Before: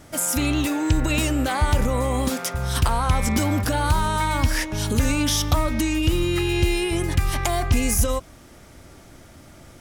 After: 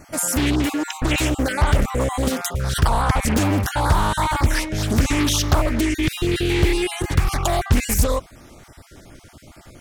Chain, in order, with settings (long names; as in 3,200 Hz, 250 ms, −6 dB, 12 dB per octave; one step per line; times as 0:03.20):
time-frequency cells dropped at random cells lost 22%
highs frequency-modulated by the lows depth 0.9 ms
level +3 dB